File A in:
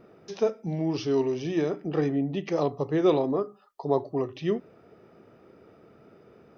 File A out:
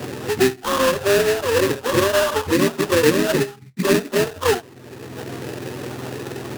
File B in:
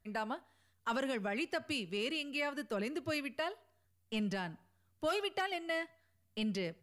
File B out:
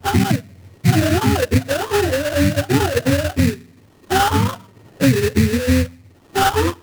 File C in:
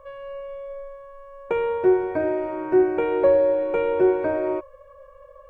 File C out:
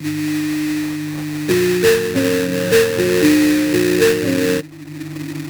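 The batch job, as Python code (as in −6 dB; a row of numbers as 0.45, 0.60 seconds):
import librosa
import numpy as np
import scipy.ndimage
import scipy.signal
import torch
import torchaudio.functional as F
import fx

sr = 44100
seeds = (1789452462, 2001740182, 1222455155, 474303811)

y = fx.octave_mirror(x, sr, pivot_hz=410.0)
y = fx.sample_hold(y, sr, seeds[0], rate_hz=2200.0, jitter_pct=20)
y = fx.vibrato(y, sr, rate_hz=0.5, depth_cents=7.5)
y = fx.band_squash(y, sr, depth_pct=70)
y = y * 10.0 ** (-2 / 20.0) / np.max(np.abs(y))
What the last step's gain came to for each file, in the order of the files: +10.0, +22.0, +7.5 decibels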